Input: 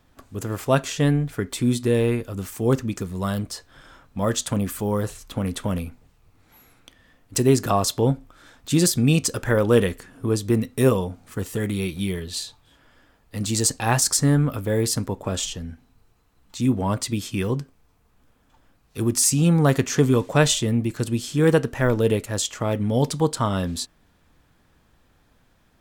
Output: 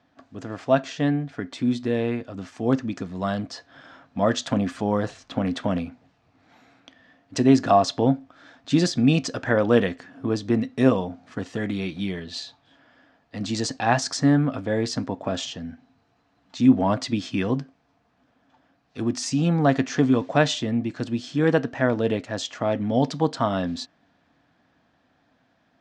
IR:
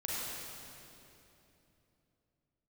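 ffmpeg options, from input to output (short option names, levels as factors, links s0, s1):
-af "highpass=130,equalizer=f=270:t=q:w=4:g=7,equalizer=f=400:t=q:w=4:g=-4,equalizer=f=690:t=q:w=4:g=9,equalizer=f=1700:t=q:w=4:g=4,lowpass=f=5600:w=0.5412,lowpass=f=5600:w=1.3066,dynaudnorm=f=140:g=31:m=3.76,volume=0.668"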